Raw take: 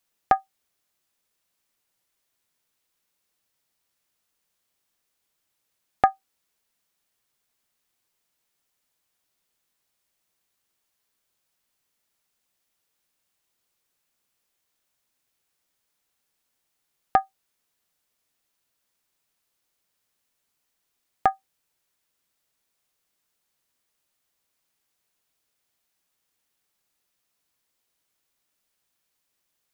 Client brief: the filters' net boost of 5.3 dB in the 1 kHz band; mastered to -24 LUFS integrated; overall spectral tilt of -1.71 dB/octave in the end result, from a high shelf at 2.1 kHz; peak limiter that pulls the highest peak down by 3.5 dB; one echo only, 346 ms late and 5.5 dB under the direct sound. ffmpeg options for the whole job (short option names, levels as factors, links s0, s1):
-af "equalizer=f=1000:t=o:g=6.5,highshelf=f=2100:g=8,alimiter=limit=0.794:level=0:latency=1,aecho=1:1:346:0.531,volume=1.06"